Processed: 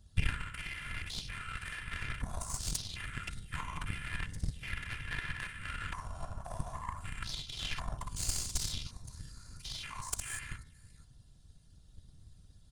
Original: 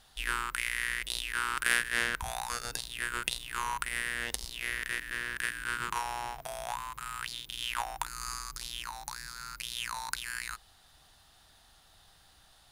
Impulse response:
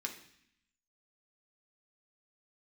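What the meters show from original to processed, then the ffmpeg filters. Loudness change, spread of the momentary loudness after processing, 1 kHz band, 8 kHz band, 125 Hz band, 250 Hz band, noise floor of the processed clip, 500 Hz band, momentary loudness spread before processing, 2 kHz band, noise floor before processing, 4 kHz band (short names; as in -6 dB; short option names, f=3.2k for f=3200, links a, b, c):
-5.5 dB, 14 LU, -9.0 dB, -2.5 dB, +10.0 dB, +2.0 dB, -60 dBFS, -7.0 dB, 9 LU, -9.0 dB, -61 dBFS, -5.0 dB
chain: -filter_complex "[0:a]acrossover=split=260[a][b];[b]acompressor=threshold=-34dB:ratio=8[c];[a][c]amix=inputs=2:normalize=0,bass=f=250:g=12,treble=f=4k:g=13,aecho=1:1:60|487:0.562|0.299,asplit=2[d][e];[e]acompressor=threshold=-40dB:ratio=5,volume=-3dB[f];[d][f]amix=inputs=2:normalize=0,afftfilt=real='hypot(re,im)*cos(PI*b)':imag='0':win_size=512:overlap=0.75,afwtdn=0.0126,lowpass=f=10k:w=0.5412,lowpass=f=10k:w=1.3066,highshelf=f=2.4k:g=-2,afftfilt=real='hypot(re,im)*cos(2*PI*random(0))':imag='hypot(re,im)*sin(2*PI*random(1))':win_size=512:overlap=0.75,bandreject=f=57.9:t=h:w=4,bandreject=f=115.8:t=h:w=4,bandreject=f=173.7:t=h:w=4,bandreject=f=231.6:t=h:w=4,bandreject=f=289.5:t=h:w=4,bandreject=f=347.4:t=h:w=4,bandreject=f=405.3:t=h:w=4,bandreject=f=463.2:t=h:w=4,bandreject=f=521.1:t=h:w=4,bandreject=f=579:t=h:w=4,bandreject=f=636.9:t=h:w=4,bandreject=f=694.8:t=h:w=4,bandreject=f=752.7:t=h:w=4,bandreject=f=810.6:t=h:w=4,bandreject=f=868.5:t=h:w=4,bandreject=f=926.4:t=h:w=4,bandreject=f=984.3:t=h:w=4,bandreject=f=1.0422k:t=h:w=4,bandreject=f=1.1001k:t=h:w=4,bandreject=f=1.158k:t=h:w=4,bandreject=f=1.2159k:t=h:w=4,bandreject=f=1.2738k:t=h:w=4,bandreject=f=1.3317k:t=h:w=4,bandreject=f=1.3896k:t=h:w=4,bandreject=f=1.4475k:t=h:w=4,bandreject=f=1.5054k:t=h:w=4,bandreject=f=1.5633k:t=h:w=4,bandreject=f=1.6212k:t=h:w=4,bandreject=f=1.6791k:t=h:w=4,bandreject=f=1.737k:t=h:w=4,bandreject=f=1.7949k:t=h:w=4,bandreject=f=1.8528k:t=h:w=4,bandreject=f=1.9107k:t=h:w=4,bandreject=f=1.9686k:t=h:w=4,bandreject=f=2.0265k:t=h:w=4,bandreject=f=2.0844k:t=h:w=4,bandreject=f=2.1423k:t=h:w=4,bandreject=f=2.2002k:t=h:w=4,bandreject=f=2.2581k:t=h:w=4,bandreject=f=2.316k:t=h:w=4,aeval=exprs='0.0422*(cos(1*acos(clip(val(0)/0.0422,-1,1)))-cos(1*PI/2))+0.00596*(cos(3*acos(clip(val(0)/0.0422,-1,1)))-cos(3*PI/2))+0.00841*(cos(4*acos(clip(val(0)/0.0422,-1,1)))-cos(4*PI/2))+0.00237*(cos(6*acos(clip(val(0)/0.0422,-1,1)))-cos(6*PI/2))+0.000668*(cos(7*acos(clip(val(0)/0.0422,-1,1)))-cos(7*PI/2))':c=same,volume=9.5dB"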